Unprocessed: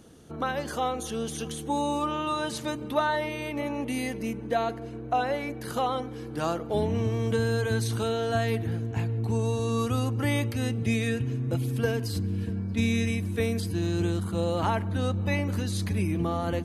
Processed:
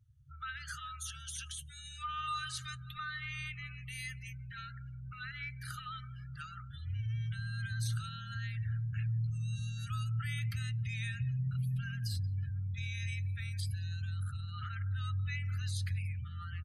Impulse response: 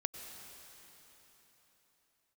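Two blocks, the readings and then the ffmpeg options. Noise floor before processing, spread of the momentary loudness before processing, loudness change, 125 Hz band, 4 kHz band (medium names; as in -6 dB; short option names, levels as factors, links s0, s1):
-38 dBFS, 5 LU, -10.0 dB, -6.0 dB, -7.5 dB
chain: -filter_complex "[0:a]alimiter=limit=0.075:level=0:latency=1:release=45,asoftclip=type=tanh:threshold=0.0708,afftfilt=real='re*(1-between(b*sr/4096,140,1200))':imag='im*(1-between(b*sr/4096,140,1200))':win_size=4096:overlap=0.75,asplit=4[s0][s1][s2][s3];[s1]adelay=179,afreqshift=41,volume=0.126[s4];[s2]adelay=358,afreqshift=82,volume=0.049[s5];[s3]adelay=537,afreqshift=123,volume=0.0191[s6];[s0][s4][s5][s6]amix=inputs=4:normalize=0,afftdn=nr=31:nf=-47,volume=0.75"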